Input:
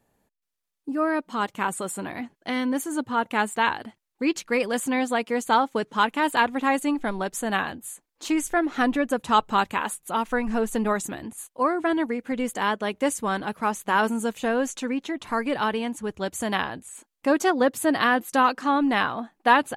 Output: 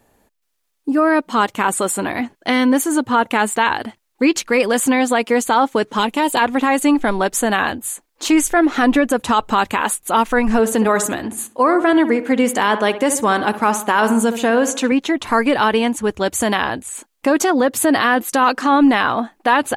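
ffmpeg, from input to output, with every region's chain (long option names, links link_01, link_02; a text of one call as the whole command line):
ffmpeg -i in.wav -filter_complex "[0:a]asettb=1/sr,asplit=3[link_01][link_02][link_03];[link_01]atrim=end=5.984[link_04];[link_02]atrim=start=5.98:end=6.39,asetpts=PTS-STARTPTS,afade=type=in:duration=0.004:curve=qsin,afade=type=out:start_time=0.406:duration=0.004:curve=qsin,equalizer=frequency=1500:width_type=o:width=1.3:gain=-10.5,aecho=1:1:5.4:0.3,atrim=end_sample=18081[link_05];[link_03]atrim=start=6.386[link_06];[link_04][link_05]acrossfade=duration=0.004:curve1=hsin:curve2=qsin[link_07];[link_07][link_06]acrossfade=duration=0.004:curve1=qsin:curve2=hsin,asettb=1/sr,asplit=3[link_08][link_09][link_10];[link_08]atrim=end=10.594[link_11];[link_09]atrim=start=10.59:end=14.92,asetpts=PTS-STARTPTS,afade=type=in:duration=0.004:curve=qsin,afade=type=out:start_time=4.326:duration=0.004:curve=qsin,highpass=85,asplit=2[link_12][link_13];[link_13]adelay=65,lowpass=frequency=1900:poles=1,volume=-12.5dB,asplit=2[link_14][link_15];[link_15]adelay=65,lowpass=frequency=1900:poles=1,volume=0.49,asplit=2[link_16][link_17];[link_17]adelay=65,lowpass=frequency=1900:poles=1,volume=0.49,asplit=2[link_18][link_19];[link_19]adelay=65,lowpass=frequency=1900:poles=1,volume=0.49,asplit=2[link_20][link_21];[link_21]adelay=65,lowpass=frequency=1900:poles=1,volume=0.49[link_22];[link_12][link_14][link_16][link_18][link_20][link_22]amix=inputs=6:normalize=0,atrim=end_sample=190953[link_23];[link_10]atrim=start=14.916[link_24];[link_11][link_23]acrossfade=duration=0.004:curve1=hsin:curve2=qsin[link_25];[link_25][link_24]acrossfade=duration=0.004:curve1=qsin:curve2=hsin,equalizer=frequency=160:width=3.2:gain=-9,alimiter=level_in=16.5dB:limit=-1dB:release=50:level=0:latency=1,volume=-4.5dB" out.wav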